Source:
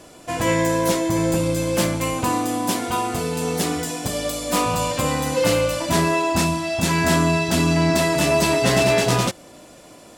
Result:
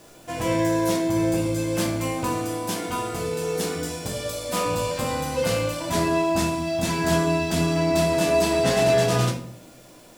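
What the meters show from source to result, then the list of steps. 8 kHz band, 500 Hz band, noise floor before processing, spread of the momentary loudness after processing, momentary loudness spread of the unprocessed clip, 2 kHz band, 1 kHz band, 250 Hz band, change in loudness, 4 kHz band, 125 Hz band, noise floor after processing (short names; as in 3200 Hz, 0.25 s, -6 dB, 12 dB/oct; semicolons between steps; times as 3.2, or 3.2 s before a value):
-5.5 dB, -1.5 dB, -45 dBFS, 8 LU, 7 LU, -5.5 dB, -4.5 dB, -3.0 dB, -3.0 dB, -4.5 dB, -3.5 dB, -48 dBFS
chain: requantised 8-bit, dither none; shoebox room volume 74 m³, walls mixed, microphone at 0.59 m; gain -6.5 dB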